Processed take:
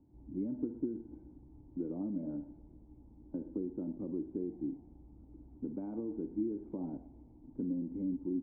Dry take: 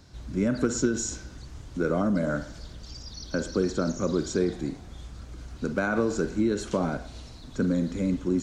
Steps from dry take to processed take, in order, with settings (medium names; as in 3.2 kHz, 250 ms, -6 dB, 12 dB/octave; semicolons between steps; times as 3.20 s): compression 2:1, threshold -28 dBFS, peak gain reduction 5.5 dB; cascade formant filter u; trim -1 dB